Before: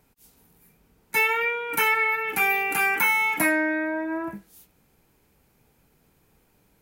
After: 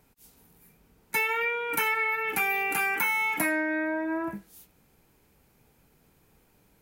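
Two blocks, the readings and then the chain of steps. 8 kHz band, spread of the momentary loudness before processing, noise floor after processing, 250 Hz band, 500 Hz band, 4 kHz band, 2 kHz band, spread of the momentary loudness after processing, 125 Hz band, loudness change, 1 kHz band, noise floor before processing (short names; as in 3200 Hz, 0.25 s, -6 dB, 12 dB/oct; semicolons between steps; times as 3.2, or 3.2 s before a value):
-3.5 dB, 9 LU, -65 dBFS, -3.0 dB, -3.0 dB, -4.5 dB, -4.5 dB, 6 LU, -2.5 dB, -4.0 dB, -4.0 dB, -65 dBFS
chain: compressor 3:1, threshold -25 dBFS, peak gain reduction 6 dB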